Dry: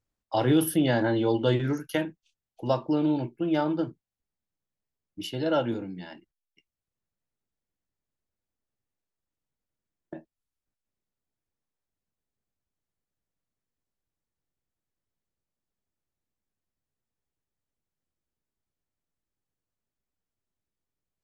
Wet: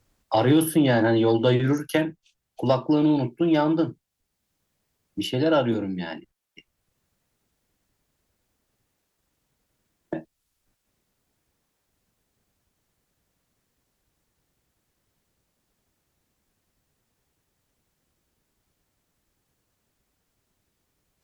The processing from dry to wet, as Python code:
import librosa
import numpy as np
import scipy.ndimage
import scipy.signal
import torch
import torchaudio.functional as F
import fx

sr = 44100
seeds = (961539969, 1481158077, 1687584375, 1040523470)

y = fx.cheby_harmonics(x, sr, harmonics=(5,), levels_db=(-29,), full_scale_db=-11.0)
y = fx.band_squash(y, sr, depth_pct=40)
y = F.gain(torch.from_numpy(y), 4.0).numpy()